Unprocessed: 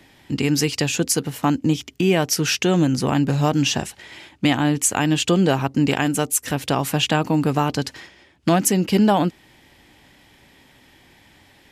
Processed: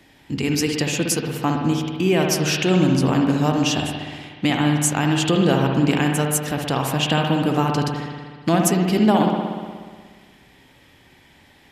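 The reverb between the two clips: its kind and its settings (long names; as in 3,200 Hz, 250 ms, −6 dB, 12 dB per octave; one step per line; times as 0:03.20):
spring reverb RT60 1.7 s, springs 60 ms, chirp 20 ms, DRR 1.5 dB
level −2 dB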